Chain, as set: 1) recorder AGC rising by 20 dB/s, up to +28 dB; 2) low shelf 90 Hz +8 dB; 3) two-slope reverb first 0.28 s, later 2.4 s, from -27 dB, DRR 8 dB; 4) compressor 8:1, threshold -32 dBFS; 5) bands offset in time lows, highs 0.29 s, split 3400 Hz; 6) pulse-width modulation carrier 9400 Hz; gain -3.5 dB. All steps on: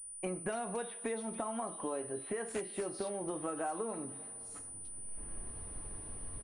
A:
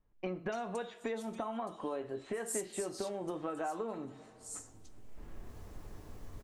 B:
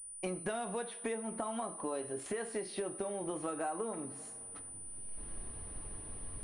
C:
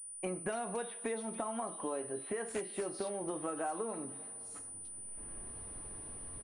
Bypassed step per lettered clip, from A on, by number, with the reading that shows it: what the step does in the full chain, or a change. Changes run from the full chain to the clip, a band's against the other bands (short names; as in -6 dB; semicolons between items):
6, 8 kHz band -5.0 dB; 5, 4 kHz band +2.5 dB; 2, 125 Hz band -2.0 dB